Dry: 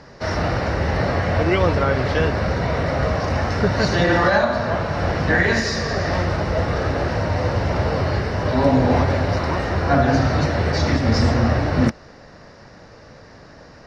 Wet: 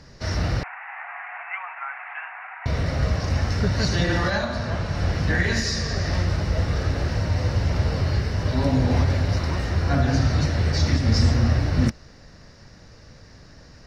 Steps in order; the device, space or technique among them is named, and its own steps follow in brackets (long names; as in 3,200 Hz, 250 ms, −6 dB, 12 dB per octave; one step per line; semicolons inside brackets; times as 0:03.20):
smiley-face EQ (low-shelf EQ 91 Hz +9 dB; parametric band 740 Hz −7 dB 2.5 octaves; high-shelf EQ 5,500 Hz +9 dB)
0:00.63–0:02.66: Chebyshev band-pass filter 730–2,600 Hz, order 5
level −3.5 dB